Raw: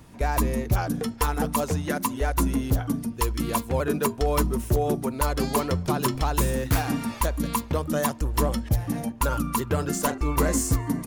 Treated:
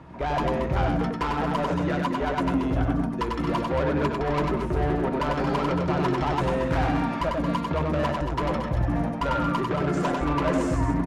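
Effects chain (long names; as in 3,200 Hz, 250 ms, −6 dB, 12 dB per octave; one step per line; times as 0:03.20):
low-pass filter 1,200 Hz 12 dB per octave
spectral tilt +3 dB per octave
in parallel at +2.5 dB: brickwall limiter −23 dBFS, peak gain reduction 6.5 dB
on the sum: floating-point word with a short mantissa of 8 bits
soft clipping −24 dBFS, distortion −10 dB
loudspeakers that aren't time-aligned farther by 33 metres −3 dB, 78 metres −8 dB
on a send at −10.5 dB: convolution reverb RT60 0.10 s, pre-delay 3 ms
on the sum: level +1.5 dB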